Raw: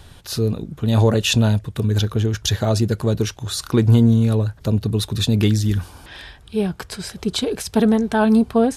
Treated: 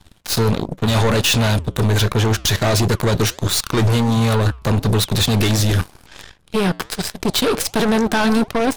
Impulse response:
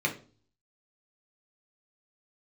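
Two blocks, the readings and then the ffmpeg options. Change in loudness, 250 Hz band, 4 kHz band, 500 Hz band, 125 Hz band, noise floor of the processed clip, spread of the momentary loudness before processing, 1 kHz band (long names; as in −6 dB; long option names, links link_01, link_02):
+1.5 dB, −1.0 dB, +5.5 dB, +1.5 dB, +0.5 dB, −49 dBFS, 11 LU, +6.0 dB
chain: -af "apsyclip=22.5dB,aeval=exprs='1.06*(cos(1*acos(clip(val(0)/1.06,-1,1)))-cos(1*PI/2))+0.376*(cos(3*acos(clip(val(0)/1.06,-1,1)))-cos(3*PI/2))+0.0841*(cos(4*acos(clip(val(0)/1.06,-1,1)))-cos(4*PI/2))+0.0237*(cos(5*acos(clip(val(0)/1.06,-1,1)))-cos(5*PI/2))+0.00668*(cos(8*acos(clip(val(0)/1.06,-1,1)))-cos(8*PI/2))':channel_layout=same,flanger=delay=2.4:depth=6.2:regen=-90:speed=1.4:shape=sinusoidal,volume=-7dB"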